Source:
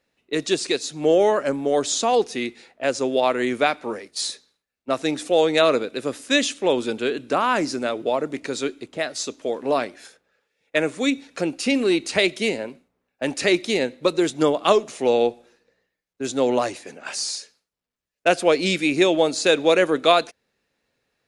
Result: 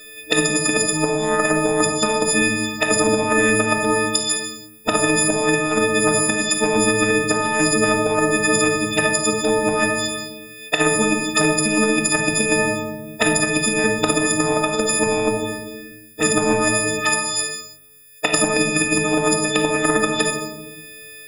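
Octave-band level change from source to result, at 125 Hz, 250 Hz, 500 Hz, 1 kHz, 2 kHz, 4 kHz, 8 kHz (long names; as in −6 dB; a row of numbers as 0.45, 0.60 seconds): +10.0, +4.0, +0.5, +3.0, +8.0, +3.0, +12.5 decibels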